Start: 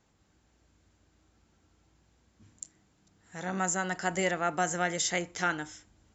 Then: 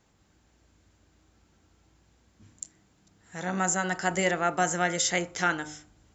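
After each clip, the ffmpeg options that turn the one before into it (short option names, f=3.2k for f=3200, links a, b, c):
-af "bandreject=f=75.36:t=h:w=4,bandreject=f=150.72:t=h:w=4,bandreject=f=226.08:t=h:w=4,bandreject=f=301.44:t=h:w=4,bandreject=f=376.8:t=h:w=4,bandreject=f=452.16:t=h:w=4,bandreject=f=527.52:t=h:w=4,bandreject=f=602.88:t=h:w=4,bandreject=f=678.24:t=h:w=4,bandreject=f=753.6:t=h:w=4,bandreject=f=828.96:t=h:w=4,bandreject=f=904.32:t=h:w=4,bandreject=f=979.68:t=h:w=4,bandreject=f=1.05504k:t=h:w=4,bandreject=f=1.1304k:t=h:w=4,bandreject=f=1.20576k:t=h:w=4,bandreject=f=1.28112k:t=h:w=4,bandreject=f=1.35648k:t=h:w=4,bandreject=f=1.43184k:t=h:w=4,bandreject=f=1.5072k:t=h:w=4,volume=3.5dB"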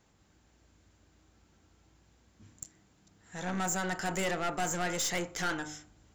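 -af "aeval=exprs='(tanh(25.1*val(0)+0.35)-tanh(0.35))/25.1':c=same"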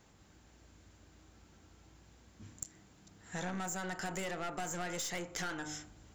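-af "acompressor=threshold=-40dB:ratio=12,volume=4dB"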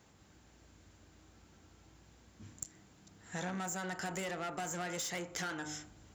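-af "highpass=51"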